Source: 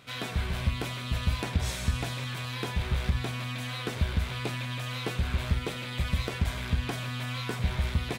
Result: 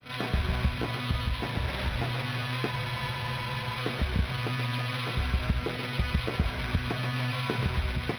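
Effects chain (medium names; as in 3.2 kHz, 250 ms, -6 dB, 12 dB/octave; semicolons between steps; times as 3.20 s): compression, threshold -27 dBFS, peak gain reduction 7.5 dB; granulator, spray 21 ms, pitch spread up and down by 0 st; thinning echo 130 ms, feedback 75%, high-pass 810 Hz, level -3.5 dB; spectral freeze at 2.75 s, 1.02 s; decimation joined by straight lines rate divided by 6×; trim +5 dB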